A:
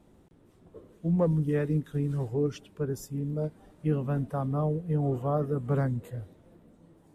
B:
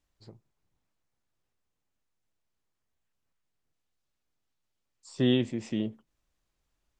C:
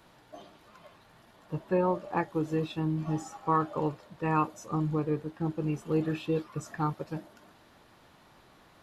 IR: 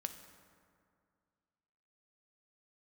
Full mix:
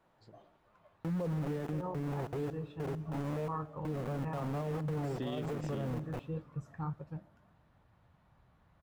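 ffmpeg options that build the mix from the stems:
-filter_complex "[0:a]lowpass=1.7k,aeval=exprs='val(0)*gte(abs(val(0)),0.0251)':c=same,volume=-3.5dB,asplit=2[a][b];[b]volume=-9dB[c];[1:a]volume=-8.5dB[d];[2:a]highpass=44,asubboost=boost=8.5:cutoff=120,flanger=delay=4.4:depth=7.5:regen=-69:speed=1.7:shape=triangular,volume=-9.5dB,asplit=2[e][f];[f]volume=-13.5dB[g];[a][e]amix=inputs=2:normalize=0,firequalizer=gain_entry='entry(330,0);entry(510,4);entry(5000,-13)':delay=0.05:min_phase=1,alimiter=level_in=6dB:limit=-24dB:level=0:latency=1,volume=-6dB,volume=0dB[h];[3:a]atrim=start_sample=2205[i];[c][g]amix=inputs=2:normalize=0[j];[j][i]afir=irnorm=-1:irlink=0[k];[d][h][k]amix=inputs=3:normalize=0,alimiter=level_in=5dB:limit=-24dB:level=0:latency=1:release=37,volume=-5dB"

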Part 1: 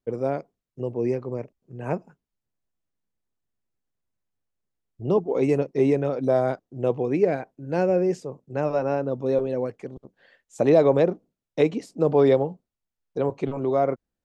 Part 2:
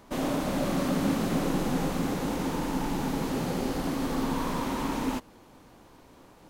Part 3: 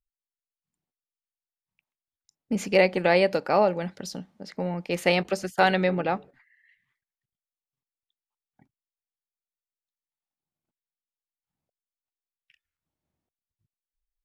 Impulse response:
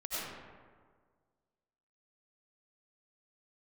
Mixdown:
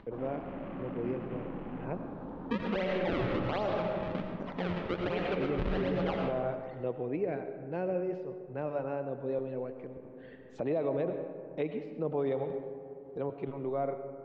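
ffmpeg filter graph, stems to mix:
-filter_complex "[0:a]volume=-12dB,asplit=2[a][b];[b]volume=-11dB[c];[1:a]afwtdn=0.0126,volume=-13dB[d];[2:a]acompressor=threshold=-39dB:ratio=1.5,acrusher=samples=35:mix=1:aa=0.000001:lfo=1:lforange=56:lforate=1.3,volume=-1dB,asplit=3[e][f][g];[f]volume=-4dB[h];[g]apad=whole_len=286369[i];[d][i]sidechaincompress=threshold=-47dB:ratio=8:attack=44:release=541[j];[3:a]atrim=start_sample=2205[k];[c][h]amix=inputs=2:normalize=0[l];[l][k]afir=irnorm=-1:irlink=0[m];[a][j][e][m]amix=inputs=4:normalize=0,lowpass=f=3.4k:w=0.5412,lowpass=f=3.4k:w=1.3066,acompressor=mode=upward:threshold=-38dB:ratio=2.5,alimiter=limit=-23dB:level=0:latency=1:release=56"

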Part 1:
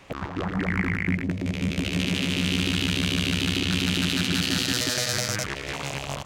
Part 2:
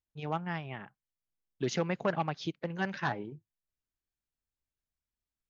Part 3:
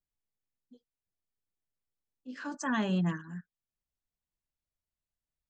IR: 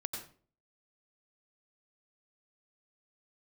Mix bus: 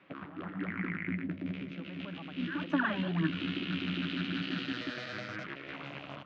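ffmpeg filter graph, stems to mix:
-filter_complex "[0:a]flanger=delay=4.7:depth=9.3:regen=-47:speed=1.1:shape=triangular,volume=-7dB[a];[1:a]alimiter=level_in=0.5dB:limit=-24dB:level=0:latency=1:release=248,volume=-0.5dB,volume=-10.5dB,afade=t=in:st=1.56:d=0.74:silence=0.398107,asplit=2[b][c];[2:a]aphaser=in_gain=1:out_gain=1:delay=4.2:decay=0.78:speed=1.9:type=sinusoidal,adelay=100,volume=-4.5dB[d];[c]apad=whole_len=275781[e];[a][e]sidechaincompress=threshold=-53dB:ratio=5:attack=5.8:release=191[f];[f][b][d]amix=inputs=3:normalize=0,highpass=160,equalizer=f=180:t=q:w=4:g=4,equalizer=f=300:t=q:w=4:g=8,equalizer=f=440:t=q:w=4:g=-4,equalizer=f=850:t=q:w=4:g=-5,equalizer=f=1.4k:t=q:w=4:g=5,lowpass=f=3.3k:w=0.5412,lowpass=f=3.3k:w=1.3066"

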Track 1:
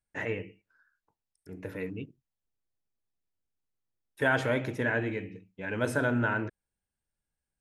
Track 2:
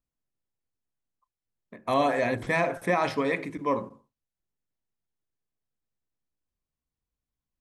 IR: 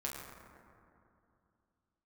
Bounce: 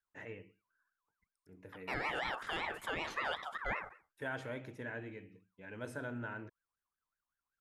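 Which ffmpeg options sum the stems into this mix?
-filter_complex "[0:a]volume=-14.5dB,asplit=2[a][b];[1:a]aeval=exprs='val(0)*sin(2*PI*1300*n/s+1300*0.25/5.3*sin(2*PI*5.3*n/s))':c=same,volume=-3.5dB[c];[b]apad=whole_len=335227[d];[c][d]sidechaincompress=threshold=-54dB:ratio=8:attack=10:release=152[e];[a][e]amix=inputs=2:normalize=0,alimiter=level_in=2.5dB:limit=-24dB:level=0:latency=1:release=180,volume=-2.5dB"

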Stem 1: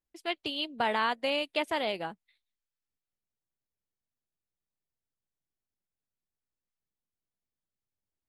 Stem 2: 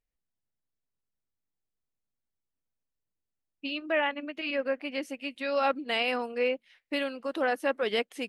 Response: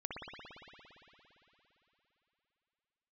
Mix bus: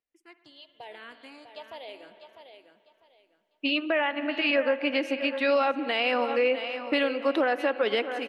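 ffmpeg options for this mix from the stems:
-filter_complex "[0:a]dynaudnorm=f=450:g=5:m=4dB,asplit=2[a][b];[b]afreqshift=-1[c];[a][c]amix=inputs=2:normalize=1,volume=-15.5dB,asplit=3[d][e][f];[e]volume=-9.5dB[g];[f]volume=-7dB[h];[1:a]acrossover=split=180 4900:gain=0.0631 1 0.224[i][j][k];[i][j][k]amix=inputs=3:normalize=0,dynaudnorm=f=220:g=5:m=11dB,volume=-2.5dB,asplit=3[l][m][n];[m]volume=-15.5dB[o];[n]volume=-14dB[p];[2:a]atrim=start_sample=2205[q];[g][o]amix=inputs=2:normalize=0[r];[r][q]afir=irnorm=-1:irlink=0[s];[h][p]amix=inputs=2:normalize=0,aecho=0:1:650|1300|1950|2600:1|0.26|0.0676|0.0176[t];[d][l][s][t]amix=inputs=4:normalize=0,alimiter=limit=-15dB:level=0:latency=1:release=159"

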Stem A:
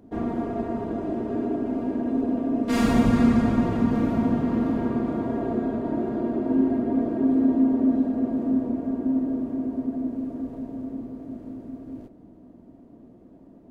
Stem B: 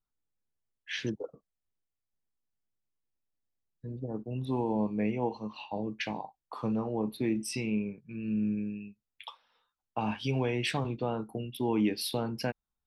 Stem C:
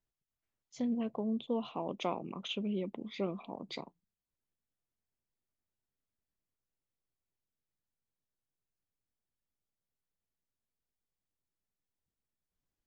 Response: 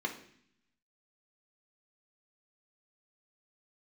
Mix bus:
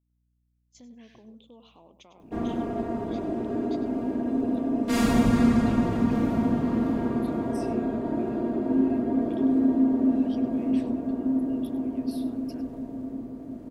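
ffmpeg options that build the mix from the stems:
-filter_complex "[0:a]adelay=2200,volume=-1.5dB[a];[1:a]acompressor=threshold=-40dB:ratio=6,adelay=100,volume=-3dB,asplit=2[b][c];[c]volume=-21dB[d];[2:a]highshelf=f=4.8k:g=12,aeval=exprs='val(0)+0.00224*(sin(2*PI*60*n/s)+sin(2*PI*2*60*n/s)/2+sin(2*PI*3*60*n/s)/3+sin(2*PI*4*60*n/s)/4+sin(2*PI*5*60*n/s)/5)':c=same,volume=-11dB,asplit=3[e][f][g];[f]volume=-16.5dB[h];[g]apad=whole_len=571952[i];[b][i]sidechaincompress=threshold=-55dB:ratio=8:attack=16:release=1090[j];[j][e]amix=inputs=2:normalize=0,agate=range=-10dB:threshold=-58dB:ratio=16:detection=peak,alimiter=level_in=19dB:limit=-24dB:level=0:latency=1:release=157,volume=-19dB,volume=0dB[k];[d][h]amix=inputs=2:normalize=0,aecho=0:1:99|198|297:1|0.16|0.0256[l];[a][k][l]amix=inputs=3:normalize=0,highshelf=f=5k:g=6"

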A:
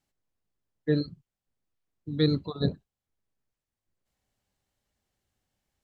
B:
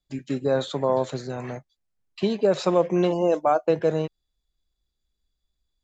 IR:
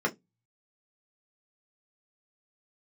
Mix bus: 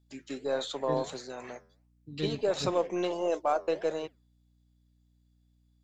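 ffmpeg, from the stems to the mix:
-filter_complex "[0:a]aeval=exprs='val(0)+0.00178*(sin(2*PI*60*n/s)+sin(2*PI*2*60*n/s)/2+sin(2*PI*3*60*n/s)/3+sin(2*PI*4*60*n/s)/4+sin(2*PI*5*60*n/s)/5)':c=same,volume=-10.5dB[a];[1:a]highpass=310,highshelf=f=2.5k:g=7.5,flanger=delay=3.2:depth=8.2:regen=-87:speed=1.5:shape=sinusoidal,volume=-3dB[b];[a][b]amix=inputs=2:normalize=0,aeval=exprs='0.141*(cos(1*acos(clip(val(0)/0.141,-1,1)))-cos(1*PI/2))+0.00178*(cos(8*acos(clip(val(0)/0.141,-1,1)))-cos(8*PI/2))':c=same"

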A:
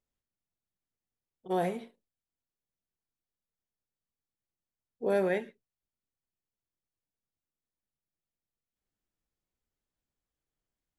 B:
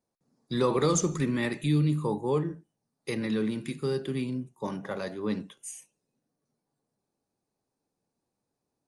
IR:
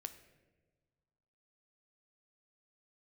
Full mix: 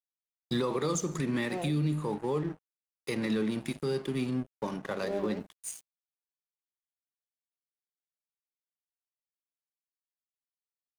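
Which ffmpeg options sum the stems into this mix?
-filter_complex "[0:a]bandpass=f=340:t=q:w=0.54:csg=0,acrusher=bits=10:mix=0:aa=0.000001,volume=-1dB[a];[1:a]acontrast=75,volume=-2dB[b];[a][b]amix=inputs=2:normalize=0,lowshelf=f=68:g=-10,aeval=exprs='sgn(val(0))*max(abs(val(0))-0.00891,0)':c=same,alimiter=limit=-21.5dB:level=0:latency=1:release=259"

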